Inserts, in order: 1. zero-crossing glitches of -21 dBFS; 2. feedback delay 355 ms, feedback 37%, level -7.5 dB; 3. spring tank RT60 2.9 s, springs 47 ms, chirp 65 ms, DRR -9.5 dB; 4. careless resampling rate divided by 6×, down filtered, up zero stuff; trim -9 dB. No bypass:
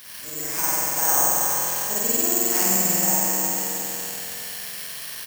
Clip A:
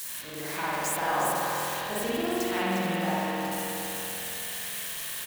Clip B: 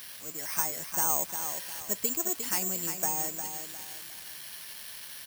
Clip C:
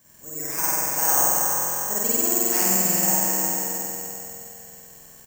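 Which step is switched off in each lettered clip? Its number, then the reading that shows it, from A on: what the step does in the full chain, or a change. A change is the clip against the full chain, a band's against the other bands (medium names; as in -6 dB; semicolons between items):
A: 4, 8 kHz band -14.5 dB; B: 3, crest factor change +5.5 dB; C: 1, 4 kHz band -3.5 dB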